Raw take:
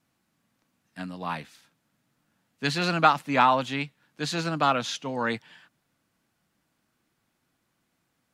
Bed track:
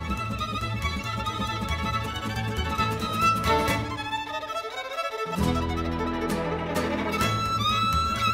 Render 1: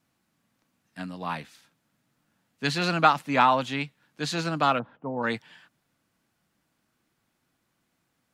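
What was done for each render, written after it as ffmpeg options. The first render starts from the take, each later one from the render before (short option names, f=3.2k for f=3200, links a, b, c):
-filter_complex "[0:a]asplit=3[a][b][c];[a]afade=t=out:st=4.78:d=0.02[d];[b]lowpass=f=1.1k:w=0.5412,lowpass=f=1.1k:w=1.3066,afade=t=in:st=4.78:d=0.02,afade=t=out:st=5.22:d=0.02[e];[c]afade=t=in:st=5.22:d=0.02[f];[d][e][f]amix=inputs=3:normalize=0"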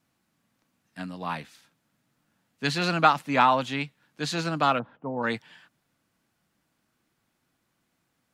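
-af anull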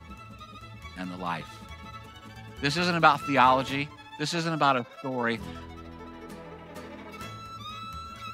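-filter_complex "[1:a]volume=-15.5dB[a];[0:a][a]amix=inputs=2:normalize=0"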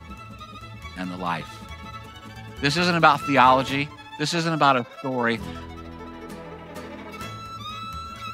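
-af "volume=5dB,alimiter=limit=-3dB:level=0:latency=1"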